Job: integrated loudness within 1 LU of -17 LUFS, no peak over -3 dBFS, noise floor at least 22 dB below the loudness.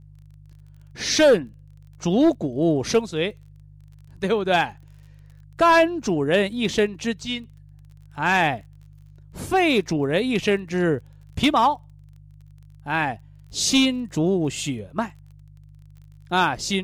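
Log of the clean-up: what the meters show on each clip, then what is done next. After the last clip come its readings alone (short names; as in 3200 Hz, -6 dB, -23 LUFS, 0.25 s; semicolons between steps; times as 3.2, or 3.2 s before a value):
ticks 29/s; hum 50 Hz; harmonics up to 150 Hz; hum level -44 dBFS; loudness -22.0 LUFS; peak -9.5 dBFS; loudness target -17.0 LUFS
-> de-click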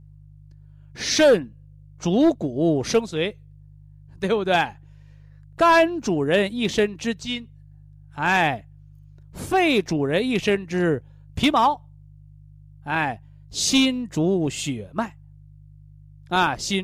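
ticks 0/s; hum 50 Hz; harmonics up to 150 Hz; hum level -44 dBFS
-> de-hum 50 Hz, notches 3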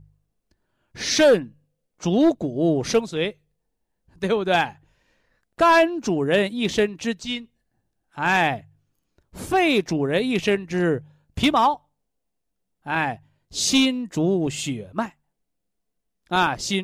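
hum none; loudness -22.0 LUFS; peak -8.5 dBFS; loudness target -17.0 LUFS
-> gain +5 dB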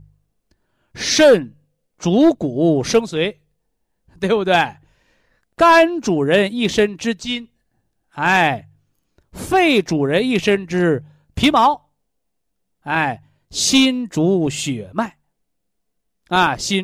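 loudness -17.0 LUFS; peak -3.5 dBFS; noise floor -73 dBFS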